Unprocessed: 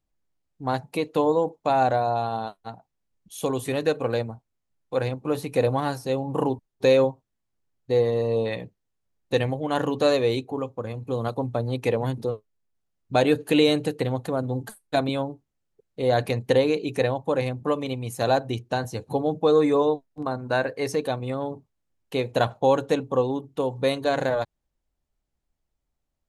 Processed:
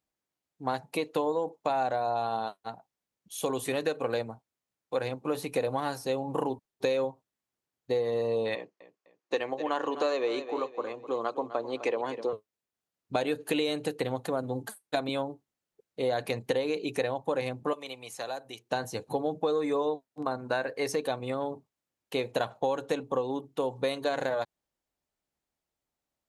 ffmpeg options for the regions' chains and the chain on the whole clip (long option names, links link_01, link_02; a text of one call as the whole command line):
ffmpeg -i in.wav -filter_complex "[0:a]asettb=1/sr,asplit=3[link_01][link_02][link_03];[link_01]atrim=end=8.554[link_04];[link_02]atrim=start=8.55:end=12.33,asetpts=PTS-STARTPTS,afade=type=in:duration=0.004:curve=qsin,afade=type=out:start_time=3.776:duration=0.004:curve=qsin,highpass=330,equalizer=frequency=340:width_type=q:width=4:gain=5,equalizer=frequency=1100:width_type=q:width=4:gain=5,equalizer=frequency=3700:width_type=q:width=4:gain=-5,lowpass=frequency=7000:width=0.5412,lowpass=frequency=7000:width=1.3066,aecho=1:1:254|508|762:0.178|0.0658|0.0243,atrim=end_sample=166698[link_05];[link_03]atrim=start=12.326[link_06];[link_04][link_05]acrossfade=duration=0.004:curve1=hsin:curve2=qsin[link_07];[link_07][link_06]acrossfade=duration=0.004:curve1=qsin:curve2=hsin,asettb=1/sr,asplit=3[link_08][link_09][link_10];[link_08]atrim=end=17.734[link_11];[link_09]atrim=start=17.73:end=18.71,asetpts=PTS-STARTPTS,afade=type=in:duration=0.004:curve=qsin,afade=type=out:start_time=0.976:duration=0.004:curve=qsin,acrossover=split=520|7600[link_12][link_13][link_14];[link_12]acompressor=threshold=-41dB:ratio=4[link_15];[link_13]acompressor=threshold=-36dB:ratio=4[link_16];[link_14]acompressor=threshold=-54dB:ratio=4[link_17];[link_15][link_16][link_17]amix=inputs=3:normalize=0,lowshelf=frequency=290:gain=-7.5[link_18];[link_10]atrim=start=18.706[link_19];[link_11][link_18]acrossfade=duration=0.004:curve1=hsin:curve2=qsin[link_20];[link_20][link_19]acrossfade=duration=0.004:curve1=qsin:curve2=hsin,highpass=frequency=330:poles=1,acompressor=threshold=-25dB:ratio=6" out.wav